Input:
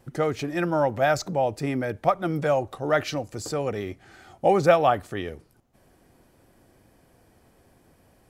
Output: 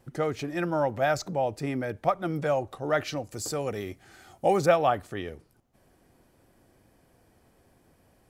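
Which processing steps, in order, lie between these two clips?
3.31–4.66 high shelf 6300 Hz +10.5 dB; gain -3.5 dB

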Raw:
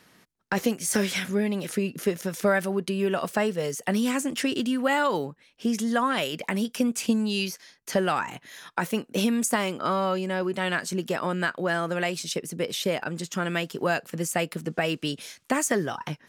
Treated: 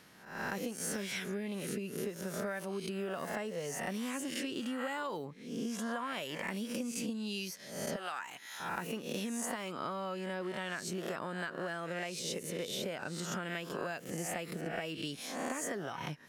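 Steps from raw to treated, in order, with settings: spectral swells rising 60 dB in 0.58 s; 7.96–8.6 HPF 1200 Hz 6 dB/oct; compressor 6:1, threshold -32 dBFS, peak gain reduction 14 dB; gain -3.5 dB

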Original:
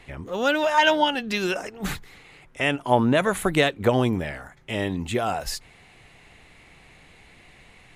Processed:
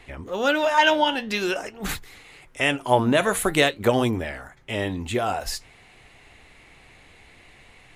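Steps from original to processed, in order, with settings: bell 170 Hz -5.5 dB 0.54 oct; flange 0.48 Hz, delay 2.4 ms, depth 9.4 ms, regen -76%; 1.89–4.11 high shelf 4600 Hz +7 dB; gain +5 dB

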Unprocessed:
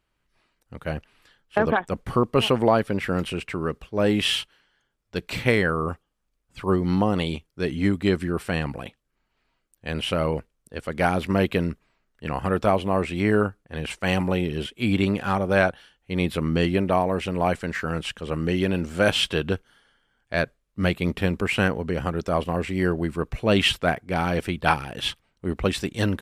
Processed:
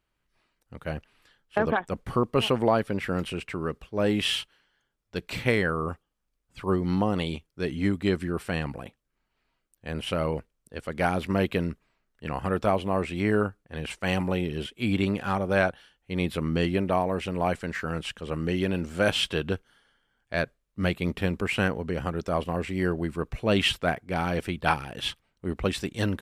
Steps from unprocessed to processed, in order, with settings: 8.69–10.07 dynamic EQ 3300 Hz, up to -6 dB, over -50 dBFS, Q 0.92; gain -3.5 dB

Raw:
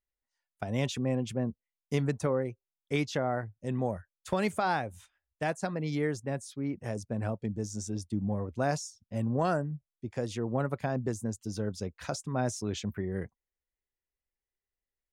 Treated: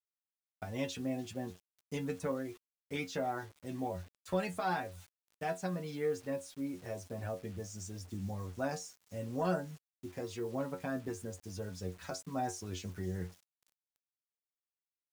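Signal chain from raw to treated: metallic resonator 89 Hz, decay 0.22 s, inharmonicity 0.002; thin delay 0.294 s, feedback 82%, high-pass 3200 Hz, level -19.5 dB; bit-crush 10-bit; gain +2 dB

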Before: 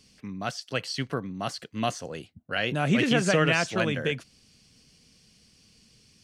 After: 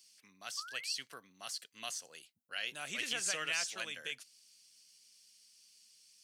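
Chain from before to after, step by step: differentiator; painted sound rise, 0.57–0.94, 1100–2900 Hz -49 dBFS

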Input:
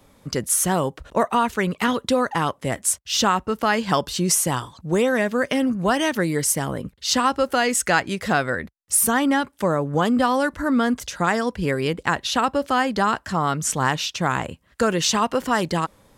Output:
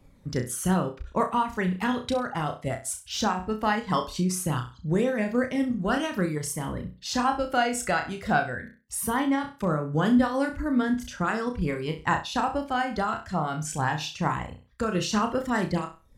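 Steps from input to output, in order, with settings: reverb removal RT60 0.55 s; tilt -1.5 dB/oct; in parallel at 0 dB: level quantiser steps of 10 dB; on the sum: flange 0.19 Hz, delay 0.4 ms, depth 1.1 ms, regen +52%; on a send: flutter echo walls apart 5.6 m, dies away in 0.32 s; on the sum: noise-modulated level, depth 55%; gain -4 dB

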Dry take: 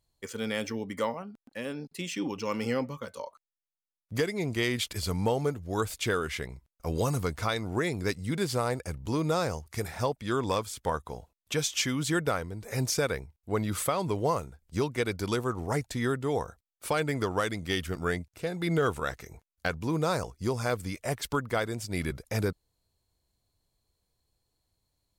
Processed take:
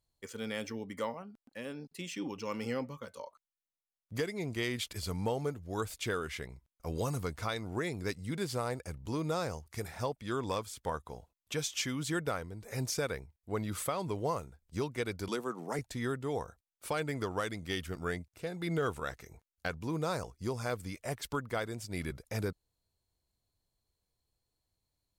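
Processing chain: 15.28–15.79 steep high-pass 150 Hz 48 dB/oct; gain -6 dB

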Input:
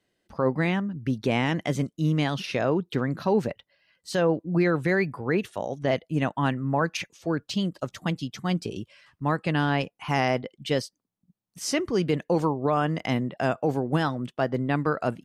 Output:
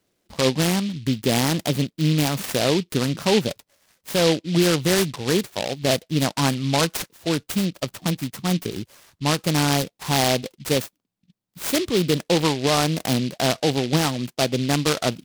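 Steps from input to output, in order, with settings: noise-modulated delay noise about 3300 Hz, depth 0.13 ms; gain +4 dB

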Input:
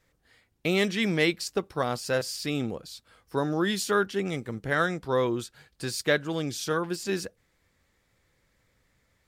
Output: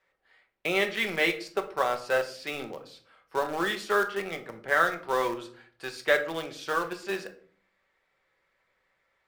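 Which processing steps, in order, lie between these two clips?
three-band isolator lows -20 dB, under 430 Hz, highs -16 dB, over 3400 Hz; in parallel at -10 dB: bit-crush 5-bit; on the sum: shoebox room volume 520 m³, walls furnished, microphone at 1.1 m

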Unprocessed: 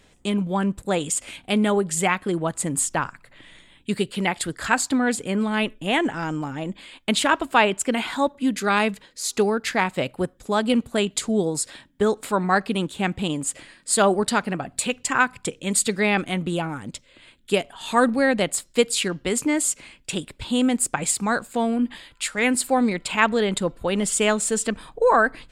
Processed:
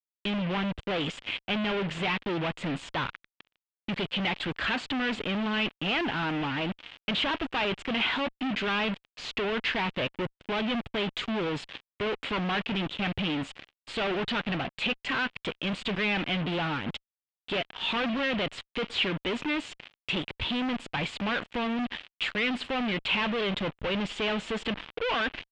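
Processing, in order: fuzz box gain 39 dB, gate -38 dBFS; ladder low-pass 3500 Hz, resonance 50%; gain -5.5 dB

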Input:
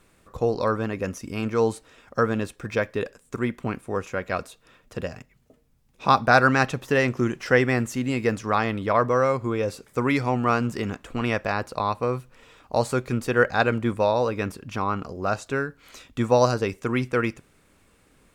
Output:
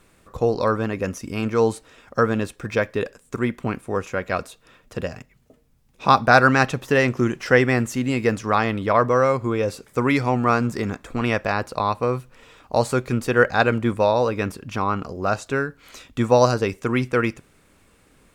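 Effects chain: 10.35–11.22 notch 2900 Hz, Q 7; gain +3 dB

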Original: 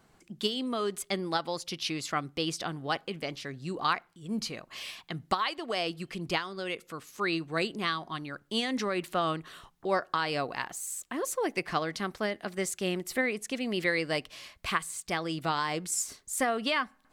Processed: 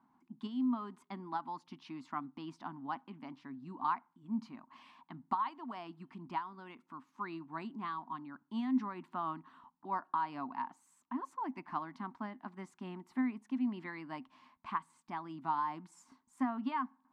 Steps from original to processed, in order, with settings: double band-pass 490 Hz, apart 1.9 oct; gain +3 dB

